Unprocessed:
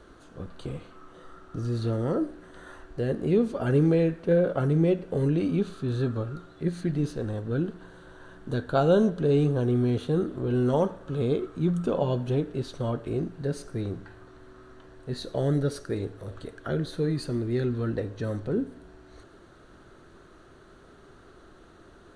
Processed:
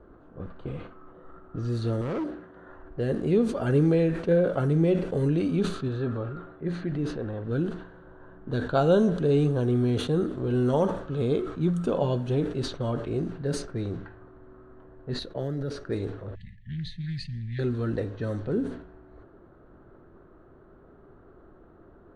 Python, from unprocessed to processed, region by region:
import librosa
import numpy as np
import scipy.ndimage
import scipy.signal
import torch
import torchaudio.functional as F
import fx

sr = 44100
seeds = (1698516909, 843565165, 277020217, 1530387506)

y = fx.chain(x, sr, fx.highpass(hz=78.0, slope=12),
    fx.clip_hard(threshold_db=-27.0), at=(2.01, 2.67))
y = fx.chain(y, sr, fx.bass_treble(bass_db=-4, treble_db=-14),
    fx.transient(attack_db=-2, sustain_db=6), at=(5.88, 7.44))
y = fx.chain(y, sr, fx.resample_bad(factor=3, down='none', up='hold'),
    fx.level_steps(step_db=10),
    fx.band_widen(depth_pct=40), at=(15.19, 15.75))
y = fx.chain(y, sr, fx.brickwall_bandstop(low_hz=220.0, high_hz=1700.0),
    fx.peak_eq(hz=160.0, db=-3.0, octaves=0.68),
    fx.doppler_dist(depth_ms=0.14), at=(16.35, 17.59))
y = fx.env_lowpass(y, sr, base_hz=870.0, full_db=-24.0)
y = fx.sustainer(y, sr, db_per_s=88.0)